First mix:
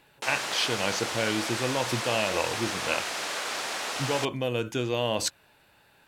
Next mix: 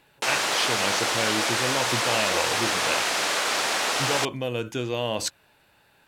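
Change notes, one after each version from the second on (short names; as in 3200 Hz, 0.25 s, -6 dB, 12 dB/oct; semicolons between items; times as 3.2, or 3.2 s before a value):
background +7.5 dB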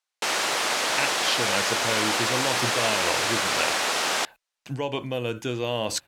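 speech: entry +0.70 s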